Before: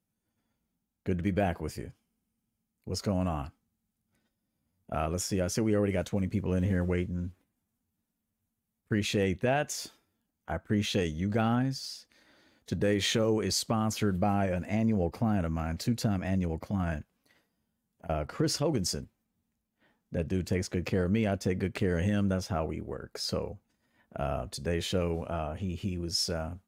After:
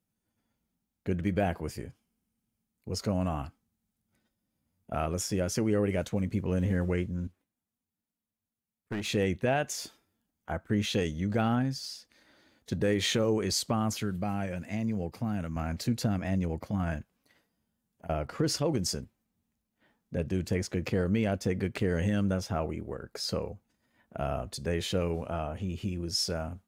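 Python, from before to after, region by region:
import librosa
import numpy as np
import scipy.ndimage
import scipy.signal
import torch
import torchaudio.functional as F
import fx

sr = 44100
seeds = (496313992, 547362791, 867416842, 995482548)

y = fx.chain(x, sr, fx.low_shelf(hz=130.0, db=-7.5),
    fx.overload_stage(gain_db=29.0),
    fx.upward_expand(threshold_db=-45.0, expansion=1.5), at=(7.27, 9.09))
y = fx.chain(y, sr, fx.highpass(hz=98.0, slope=12),
    fx.peak_eq(hz=580.0, db=-7.0, octaves=2.9), at=(13.97, 15.56))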